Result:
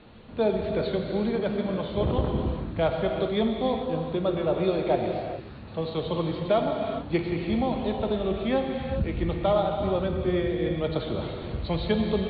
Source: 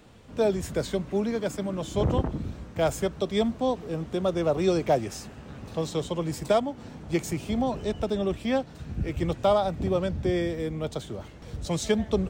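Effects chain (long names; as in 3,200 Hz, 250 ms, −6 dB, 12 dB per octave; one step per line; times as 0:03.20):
Chebyshev low-pass filter 4,400 Hz, order 8
in parallel at +2.5 dB: speech leveller 0.5 s
on the sum: reverb whose tail is shaped and stops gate 450 ms flat, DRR 2 dB
level −8 dB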